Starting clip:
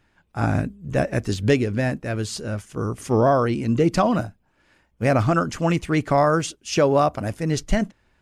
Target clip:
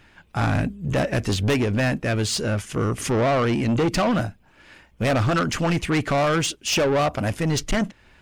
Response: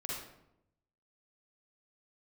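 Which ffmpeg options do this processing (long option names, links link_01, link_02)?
-filter_complex "[0:a]equalizer=frequency=2700:width_type=o:width=1.4:gain=5,asplit=2[link_01][link_02];[link_02]acompressor=threshold=-31dB:ratio=6,volume=1dB[link_03];[link_01][link_03]amix=inputs=2:normalize=0,asoftclip=type=tanh:threshold=-19.5dB,volume=2.5dB"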